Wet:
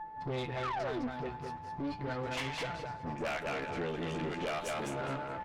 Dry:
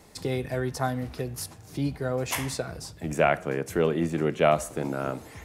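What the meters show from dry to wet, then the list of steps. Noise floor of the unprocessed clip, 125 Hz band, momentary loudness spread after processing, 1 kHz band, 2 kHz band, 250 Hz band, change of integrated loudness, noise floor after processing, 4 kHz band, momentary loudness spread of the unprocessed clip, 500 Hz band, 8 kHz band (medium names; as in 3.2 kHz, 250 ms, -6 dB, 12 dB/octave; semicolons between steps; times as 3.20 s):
-48 dBFS, -10.0 dB, 5 LU, -6.0 dB, -6.0 dB, -9.0 dB, -9.0 dB, -45 dBFS, -4.5 dB, 10 LU, -10.5 dB, -13.5 dB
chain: level-controlled noise filter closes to 1.2 kHz, open at -18 dBFS; peaking EQ 2.4 kHz +4 dB 3 oct; phase dispersion highs, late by 52 ms, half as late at 360 Hz; on a send: feedback delay 207 ms, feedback 23%, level -6 dB; on the sum: painted sound fall, 0.63–1.08 s, 220–1400 Hz -23 dBFS; dynamic bell 3.5 kHz, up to +6 dB, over -42 dBFS, Q 0.95; whistle 870 Hz -34 dBFS; flange 0.37 Hz, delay 5.7 ms, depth 7.9 ms, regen +39%; compression 6:1, threshold -27 dBFS, peak gain reduction 8.5 dB; valve stage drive 31 dB, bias 0.65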